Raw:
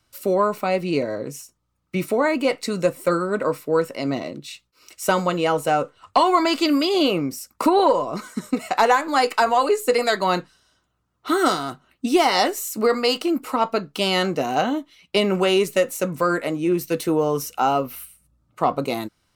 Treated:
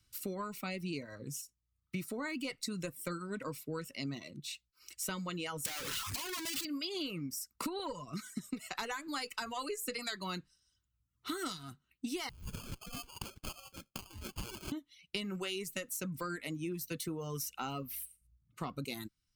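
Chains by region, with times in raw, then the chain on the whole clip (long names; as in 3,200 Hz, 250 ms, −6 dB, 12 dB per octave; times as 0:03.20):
0:05.65–0:06.65: sign of each sample alone + high-pass filter 360 Hz 6 dB per octave + leveller curve on the samples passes 1
0:12.29–0:14.72: Butterworth high-pass 1,100 Hz 72 dB per octave + compressor whose output falls as the input rises −35 dBFS + sample-rate reduction 1,900 Hz
whole clip: reverb reduction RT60 0.82 s; guitar amp tone stack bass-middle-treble 6-0-2; downward compressor, threshold −46 dBFS; level +10.5 dB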